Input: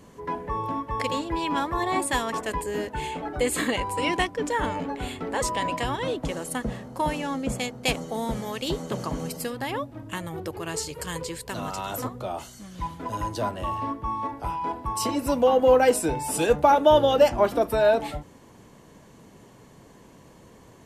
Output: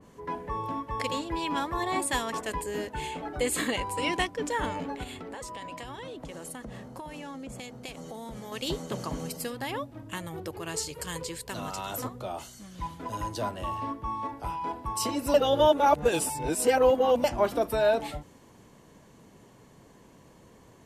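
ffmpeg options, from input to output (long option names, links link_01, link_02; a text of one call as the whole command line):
ffmpeg -i in.wav -filter_complex "[0:a]asettb=1/sr,asplit=3[link_01][link_02][link_03];[link_01]atrim=end=5.034[link_04];[link_02]atrim=start=5.03:end=8.52,asetpts=PTS-STARTPTS,afade=type=in:duration=0.004:curve=qsin,afade=type=out:start_time=3.486:duration=0.004:curve=qsin,acompressor=threshold=-32dB:ratio=16:attack=3.2:release=140:knee=1:detection=peak[link_05];[link_03]atrim=start=8.516[link_06];[link_04][link_05]acrossfade=duration=0.004:curve1=hsin:curve2=qsin[link_07];[link_07][link_06]acrossfade=duration=0.004:curve1=qsin:curve2=hsin,asplit=3[link_08][link_09][link_10];[link_08]atrim=end=15.342[link_11];[link_09]atrim=start=15.338:end=17.242,asetpts=PTS-STARTPTS,areverse[link_12];[link_10]atrim=start=17.238[link_13];[link_11][link_12]acrossfade=duration=0.004:curve1=hsin:curve2=hsin[link_14];[link_14][link_13]acrossfade=duration=0.004:curve1=hsin:curve2=hsin,adynamicequalizer=threshold=0.01:dfrequency=2400:dqfactor=0.7:tfrequency=2400:tqfactor=0.7:attack=5:release=100:ratio=0.375:range=1.5:mode=boostabove:tftype=highshelf,volume=-4dB" out.wav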